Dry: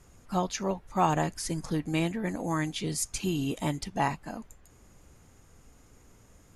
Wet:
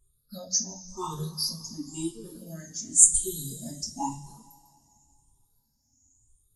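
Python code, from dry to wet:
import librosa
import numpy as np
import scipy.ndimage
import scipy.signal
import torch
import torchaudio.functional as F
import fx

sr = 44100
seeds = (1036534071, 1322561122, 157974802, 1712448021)

y = fx.spec_ripple(x, sr, per_octave=0.65, drift_hz=0.94, depth_db=21)
y = fx.curve_eq(y, sr, hz=(100.0, 510.0, 1600.0, 2500.0, 3700.0, 10000.0), db=(0, -11, -9, -18, 7, 13))
y = fx.rev_double_slope(y, sr, seeds[0], early_s=0.29, late_s=3.6, knee_db=-17, drr_db=-5.0)
y = fx.spectral_expand(y, sr, expansion=1.5)
y = y * librosa.db_to_amplitude(-7.0)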